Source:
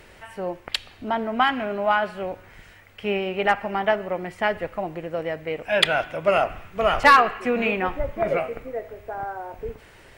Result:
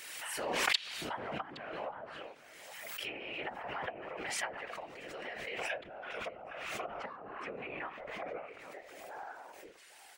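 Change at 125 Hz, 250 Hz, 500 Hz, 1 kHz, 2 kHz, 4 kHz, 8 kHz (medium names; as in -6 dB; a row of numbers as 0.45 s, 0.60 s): -18.5 dB, -19.0 dB, -18.5 dB, -19.0 dB, -14.5 dB, -10.5 dB, 0.0 dB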